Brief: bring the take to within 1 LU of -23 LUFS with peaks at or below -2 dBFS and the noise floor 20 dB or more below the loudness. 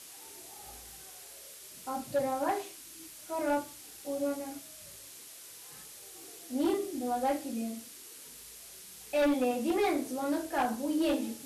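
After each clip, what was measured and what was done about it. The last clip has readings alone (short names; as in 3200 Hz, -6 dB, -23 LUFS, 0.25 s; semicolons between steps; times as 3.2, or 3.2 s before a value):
clipped 1.3%; flat tops at -23.5 dBFS; noise floor -50 dBFS; noise floor target -53 dBFS; loudness -32.5 LUFS; peak -23.5 dBFS; loudness target -23.0 LUFS
-> clip repair -23.5 dBFS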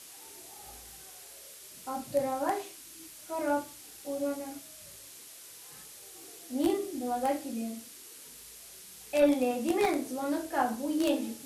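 clipped 0.0%; noise floor -50 dBFS; noise floor target -52 dBFS
-> denoiser 6 dB, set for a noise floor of -50 dBFS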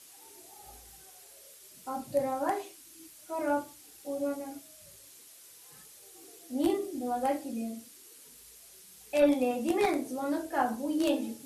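noise floor -54 dBFS; loudness -31.5 LUFS; peak -14.5 dBFS; loudness target -23.0 LUFS
-> gain +8.5 dB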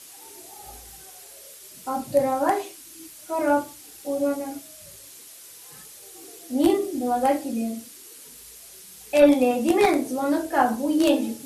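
loudness -23.0 LUFS; peak -6.0 dBFS; noise floor -45 dBFS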